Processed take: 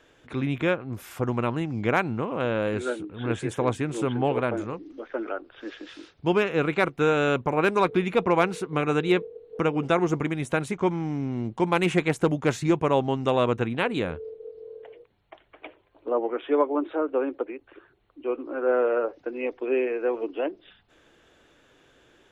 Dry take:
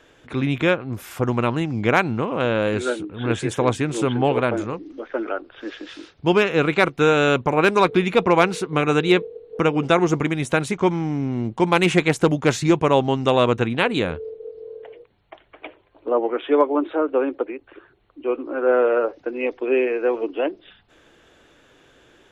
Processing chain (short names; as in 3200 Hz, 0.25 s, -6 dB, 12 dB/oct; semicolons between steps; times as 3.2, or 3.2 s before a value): dynamic EQ 4800 Hz, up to -5 dB, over -41 dBFS, Q 0.81; gain -5 dB